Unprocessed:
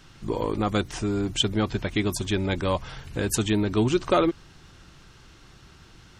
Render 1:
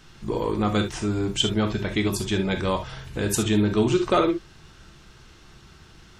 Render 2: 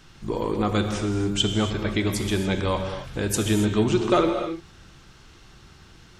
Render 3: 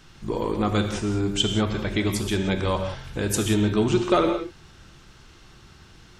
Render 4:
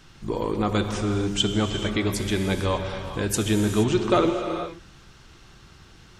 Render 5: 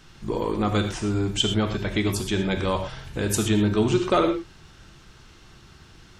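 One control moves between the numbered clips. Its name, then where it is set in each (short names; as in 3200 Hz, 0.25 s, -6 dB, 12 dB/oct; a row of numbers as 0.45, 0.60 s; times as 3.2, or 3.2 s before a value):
non-linear reverb, gate: 90, 310, 210, 500, 140 ms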